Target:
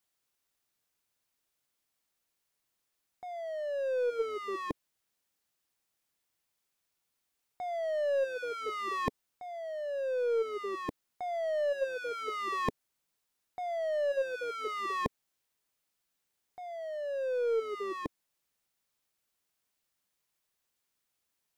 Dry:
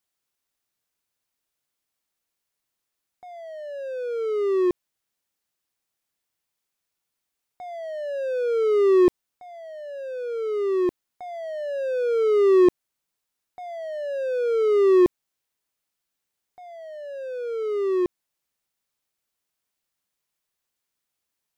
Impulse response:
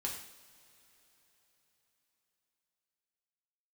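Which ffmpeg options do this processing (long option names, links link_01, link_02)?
-af "afftfilt=real='re*lt(hypot(re,im),0.562)':imag='im*lt(hypot(re,im),0.562)':win_size=1024:overlap=0.75,aeval=exprs='0.2*(cos(1*acos(clip(val(0)/0.2,-1,1)))-cos(1*PI/2))+0.00355*(cos(4*acos(clip(val(0)/0.2,-1,1)))-cos(4*PI/2))':channel_layout=same"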